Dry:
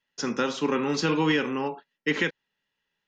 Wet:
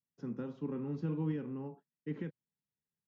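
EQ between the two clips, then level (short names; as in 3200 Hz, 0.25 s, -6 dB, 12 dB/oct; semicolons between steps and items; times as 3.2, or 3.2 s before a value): band-pass 120 Hz, Q 1.4; -2.0 dB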